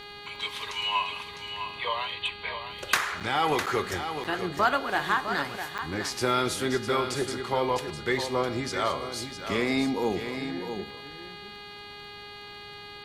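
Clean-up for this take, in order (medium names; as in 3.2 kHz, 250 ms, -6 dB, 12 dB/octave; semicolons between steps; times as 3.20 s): de-click; de-hum 410.5 Hz, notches 11; interpolate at 3.20/3.66/4.24/5.78 s, 6.7 ms; inverse comb 655 ms -8.5 dB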